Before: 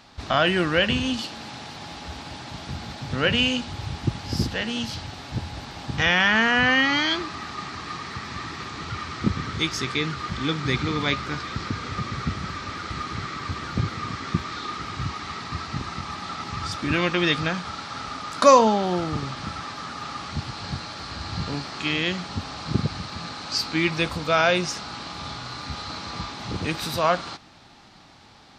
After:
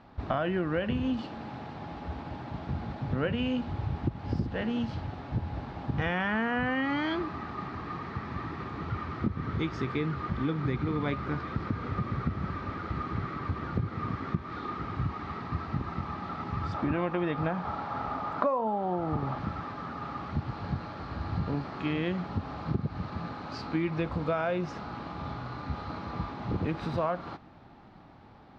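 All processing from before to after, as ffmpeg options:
-filter_complex "[0:a]asettb=1/sr,asplit=3[a][b][c];[a]atrim=end=16.744[d];[b]atrim=start=16.74:end=19.38,asetpts=PTS-STARTPTS,afade=t=in:d=0.004:c=qsin,afade=t=out:st=2.636:d=0.004:c=qsin,acrossover=split=4300[e][f];[f]acompressor=threshold=-43dB:ratio=4:attack=1:release=60[g];[e][g]amix=inputs=2:normalize=0,equalizer=f=790:w=1.4:g=8[h];[c]atrim=start=19.376[i];[d][h]acrossfade=d=0.004:c1=hsin:c2=qsin[j];[j][i]acrossfade=d=0.004:c1=qsin:c2=hsin,lowpass=f=1k:p=1,aemphasis=mode=reproduction:type=75fm,acompressor=threshold=-25dB:ratio=12"

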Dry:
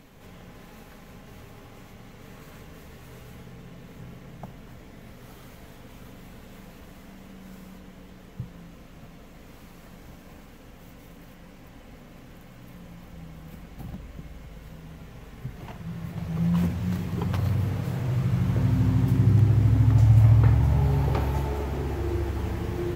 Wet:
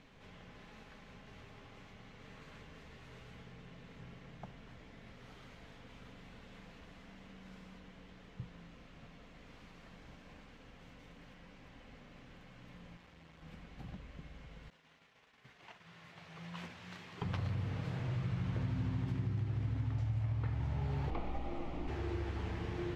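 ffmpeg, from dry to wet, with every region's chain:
-filter_complex "[0:a]asettb=1/sr,asplit=3[a][b][c];[a]atrim=end=12.974[d];[b]atrim=start=12.97:end=13.42,asetpts=PTS-STARTPTS,afade=t=in:d=0.004:c=qsin,afade=t=out:st=0.446:d=0.004:c=qsin,aeval=exprs='clip(val(0),-1,0.00422)':c=same,highpass=55,equalizer=f=160:w=0.42:g=-5.5[e];[c]atrim=start=13.416[f];[d][e]acrossfade=d=0.004:c1=hsin:c2=qsin[g];[g][f]acrossfade=d=0.004:c1=qsin:c2=hsin,asettb=1/sr,asplit=3[h][i][j];[h]atrim=end=14.704[k];[i]atrim=start=14.7:end=17.22,asetpts=PTS-STARTPTS,afade=t=in:d=0.004:c=qsin,afade=t=out:st=2.516:d=0.004:c=qsin,agate=range=-33dB:threshold=-39dB:ratio=3:release=100:detection=peak,highpass=f=1k:p=1[l];[j]atrim=start=17.216[m];[k][l]acrossfade=d=0.004:c1=hsin:c2=qsin[n];[n][m]acrossfade=d=0.004:c1=qsin:c2=hsin,asettb=1/sr,asplit=3[o][p][q];[o]atrim=end=21.104[r];[p]atrim=start=21.1:end=21.88,asetpts=PTS-STARTPTS,afade=t=in:d=0.004:c=qsin,afade=t=out:st=0.776:d=0.004:c=qsin,equalizer=f=1.7k:w=5:g=-13.5,acrossover=split=2800[s][t];[t]acompressor=threshold=-58dB:ratio=4:attack=1:release=60[u];[s][u]amix=inputs=2:normalize=0,afreqshift=-78[v];[q]atrim=start=21.876[w];[r][v]acrossfade=d=0.004:c1=hsin:c2=qsin[x];[x][w]acrossfade=d=0.004:c1=qsin:c2=hsin,lowpass=3.9k,tiltshelf=f=1.4k:g=-4,acompressor=threshold=-26dB:ratio=10,volume=-6dB"

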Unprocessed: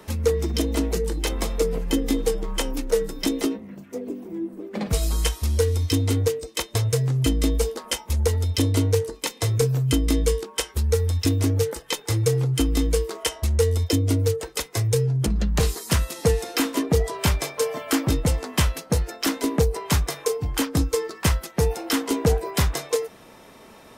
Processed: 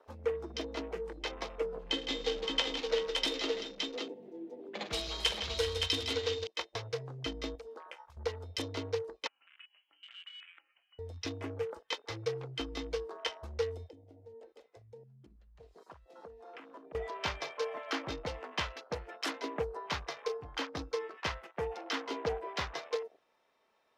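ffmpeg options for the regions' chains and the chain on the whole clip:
-filter_complex "[0:a]asettb=1/sr,asplit=3[a][b][c];[a]atrim=end=1.794[d];[b]atrim=start=1.79:end=6.47,asetpts=PTS-STARTPTS,afade=t=in:d=0.004:c=qsin,afade=t=out:st=4.676:d=0.004:c=qsin,equalizer=f=3.5k:t=o:w=1.1:g=10,aecho=1:1:46|106|159|386|568:0.237|0.112|0.335|0.251|0.631,atrim=end_sample=206388[e];[c]atrim=start=6.466[f];[d][e]acrossfade=d=0.004:c1=hsin:c2=qsin[g];[g][f]acrossfade=d=0.004:c1=qsin:c2=hsin,asettb=1/sr,asplit=3[h][i][j];[h]atrim=end=7.554[k];[i]atrim=start=7.55:end=8.17,asetpts=PTS-STARTPTS,afade=t=in:d=0.004:c=qsin,afade=t=out:st=0.616:d=0.004:c=qsin,lowshelf=f=170:g=-7.5,acompressor=threshold=-30dB:ratio=12:attack=3.2:release=140:knee=1:detection=peak[l];[j]atrim=start=8.166[m];[k][l]acrossfade=d=0.004:c1=hsin:c2=qsin[n];[n][m]acrossfade=d=0.004:c1=qsin:c2=hsin,asettb=1/sr,asplit=3[o][p][q];[o]atrim=end=9.274[r];[p]atrim=start=9.27:end=10.99,asetpts=PTS-STARTPTS,afade=t=in:d=0.004:c=qsin,afade=t=out:st=1.716:d=0.004:c=qsin,highpass=f=480:w=0.5412,highpass=f=480:w=1.3066,acompressor=threshold=-35dB:ratio=10:attack=3.2:release=140:knee=1:detection=peak,lowpass=f=2.9k:t=q:w=0.5098,lowpass=f=2.9k:t=q:w=0.6013,lowpass=f=2.9k:t=q:w=0.9,lowpass=f=2.9k:t=q:w=2.563,afreqshift=-3400[s];[q]atrim=start=10.986[t];[r][s]acrossfade=d=0.004:c1=hsin:c2=qsin[u];[u][t]acrossfade=d=0.004:c1=qsin:c2=hsin,asettb=1/sr,asplit=3[v][w][x];[v]atrim=end=13.884[y];[w]atrim=start=13.88:end=16.95,asetpts=PTS-STARTPTS,afade=t=in:d=0.004:c=qsin,afade=t=out:st=3.066:d=0.004:c=qsin,highshelf=f=5.8k:g=-10.5,acompressor=threshold=-35dB:ratio=6:attack=3.2:release=140:knee=1:detection=peak[z];[x]atrim=start=16.946[aa];[y][z]acrossfade=d=0.004:c1=hsin:c2=qsin[ab];[ab][aa]acrossfade=d=0.004:c1=qsin:c2=hsin,acrossover=split=430 5600:gain=0.158 1 0.2[ac][ad][ae];[ac][ad][ae]amix=inputs=3:normalize=0,afwtdn=0.00891,volume=-7.5dB"

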